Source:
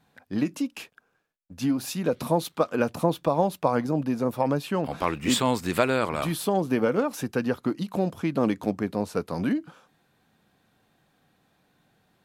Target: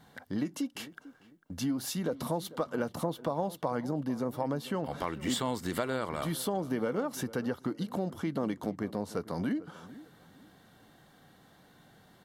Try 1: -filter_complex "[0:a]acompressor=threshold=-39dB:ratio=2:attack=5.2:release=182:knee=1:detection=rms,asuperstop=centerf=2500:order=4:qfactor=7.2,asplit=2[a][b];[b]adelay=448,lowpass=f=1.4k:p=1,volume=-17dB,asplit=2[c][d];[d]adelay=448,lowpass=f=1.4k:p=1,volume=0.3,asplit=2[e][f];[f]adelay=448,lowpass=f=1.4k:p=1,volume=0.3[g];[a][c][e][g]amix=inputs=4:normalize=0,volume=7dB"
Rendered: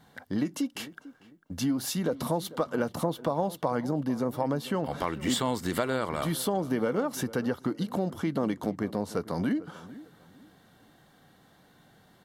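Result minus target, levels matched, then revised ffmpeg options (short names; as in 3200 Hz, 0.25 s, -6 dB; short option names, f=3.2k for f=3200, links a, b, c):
compressor: peak gain reduction -4 dB
-filter_complex "[0:a]acompressor=threshold=-46.5dB:ratio=2:attack=5.2:release=182:knee=1:detection=rms,asuperstop=centerf=2500:order=4:qfactor=7.2,asplit=2[a][b];[b]adelay=448,lowpass=f=1.4k:p=1,volume=-17dB,asplit=2[c][d];[d]adelay=448,lowpass=f=1.4k:p=1,volume=0.3,asplit=2[e][f];[f]adelay=448,lowpass=f=1.4k:p=1,volume=0.3[g];[a][c][e][g]amix=inputs=4:normalize=0,volume=7dB"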